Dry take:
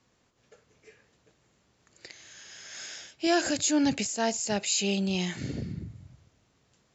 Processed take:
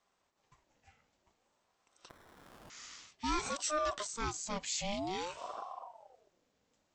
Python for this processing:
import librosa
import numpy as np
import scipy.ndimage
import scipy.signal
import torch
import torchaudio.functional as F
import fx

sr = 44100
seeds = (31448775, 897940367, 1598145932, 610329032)

y = fx.sample_hold(x, sr, seeds[0], rate_hz=1900.0, jitter_pct=0, at=(2.09, 2.7))
y = fx.ring_lfo(y, sr, carrier_hz=630.0, swing_pct=45, hz=0.53)
y = y * 10.0 ** (-6.5 / 20.0)